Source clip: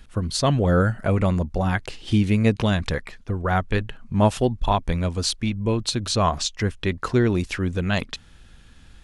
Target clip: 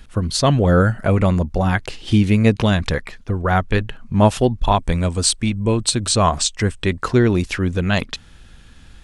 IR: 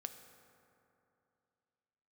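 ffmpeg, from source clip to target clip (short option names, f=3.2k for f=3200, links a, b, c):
-filter_complex "[0:a]asettb=1/sr,asplit=3[a][b][c];[a]atrim=end=4.754[d];[b]atrim=start=4.75:end=7.04,asetpts=PTS-STARTPTS,afade=t=in:d=0.004:c=qsin,afade=t=out:st=2.286:d=0.004:c=qsin,equalizer=f=8.2k:w=5.6:g=13.5[e];[c]atrim=start=7.036[f];[d][e]acrossfade=d=0.004:c1=hsin:c2=qsin[g];[g][f]acrossfade=d=0.004:c1=qsin:c2=hsin,volume=4.5dB"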